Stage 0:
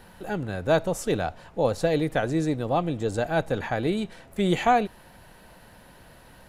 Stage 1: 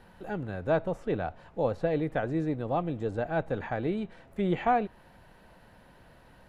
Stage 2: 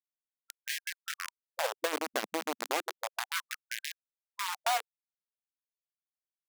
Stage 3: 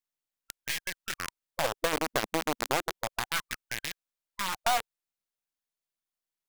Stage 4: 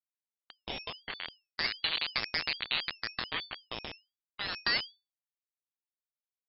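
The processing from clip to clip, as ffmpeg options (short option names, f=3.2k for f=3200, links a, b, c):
-filter_complex "[0:a]acrossover=split=3100[a][b];[b]acompressor=threshold=-53dB:ratio=6[c];[a][c]amix=inputs=2:normalize=0,highshelf=f=4.8k:g=-11.5,volume=-4.5dB"
-af "acrusher=bits=3:mix=0:aa=0.000001,acompressor=threshold=-25dB:ratio=6,afftfilt=real='re*gte(b*sr/1024,210*pow(1600/210,0.5+0.5*sin(2*PI*0.32*pts/sr)))':imag='im*gte(b*sr/1024,210*pow(1600/210,0.5+0.5*sin(2*PI*0.32*pts/sr)))':win_size=1024:overlap=0.75"
-af "aeval=exprs='if(lt(val(0),0),0.447*val(0),val(0))':c=same,volume=5.5dB"
-af "acrusher=bits=7:dc=4:mix=0:aa=0.000001,lowpass=f=3.4k:t=q:w=0.5098,lowpass=f=3.4k:t=q:w=0.6013,lowpass=f=3.4k:t=q:w=0.9,lowpass=f=3.4k:t=q:w=2.563,afreqshift=-4000,aeval=exprs='val(0)*sin(2*PI*1000*n/s+1000*0.5/1.3*sin(2*PI*1.3*n/s))':c=same"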